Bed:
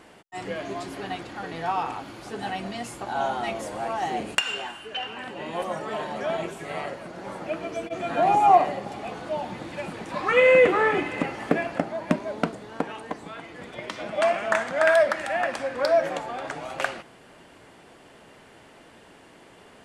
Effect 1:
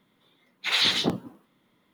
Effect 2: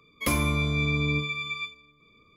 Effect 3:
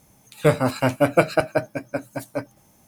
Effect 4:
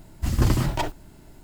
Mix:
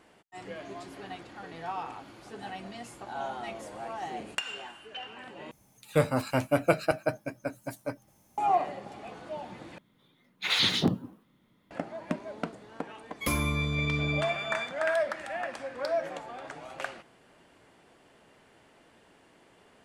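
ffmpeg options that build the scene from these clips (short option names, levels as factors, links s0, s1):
-filter_complex "[0:a]volume=0.355[s0];[1:a]bass=f=250:g=8,treble=f=4000:g=0[s1];[s0]asplit=3[s2][s3][s4];[s2]atrim=end=5.514[s5];[3:a]atrim=end=2.87,asetpts=PTS-STARTPTS,volume=0.447[s6];[s3]atrim=start=8.376:end=9.784[s7];[s1]atrim=end=1.93,asetpts=PTS-STARTPTS,volume=0.708[s8];[s4]atrim=start=11.706[s9];[2:a]atrim=end=2.36,asetpts=PTS-STARTPTS,volume=0.668,afade=t=in:d=0.004:c=hsin,afade=t=out:st=2.356:d=0.004:c=hsin,adelay=573300S[s10];[s5][s6]acrossfade=d=0.004:c1=hsin:c2=hsin[s11];[s11][s7]acrossfade=d=0.004:c1=hsin:c2=hsin[s12];[s12][s8]acrossfade=d=0.004:c1=hsin:c2=hsin[s13];[s13][s9]acrossfade=d=0.004:c1=hsin:c2=hsin[s14];[s14][s10]amix=inputs=2:normalize=0"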